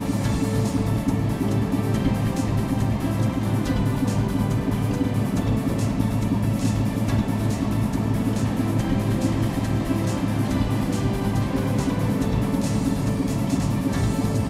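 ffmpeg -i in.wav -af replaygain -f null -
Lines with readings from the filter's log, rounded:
track_gain = +7.5 dB
track_peak = 0.265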